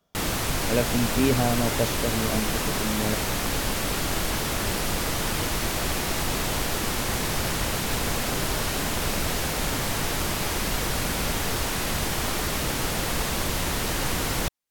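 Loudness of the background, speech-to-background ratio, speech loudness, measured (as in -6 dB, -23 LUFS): -26.0 LUFS, -2.0 dB, -28.0 LUFS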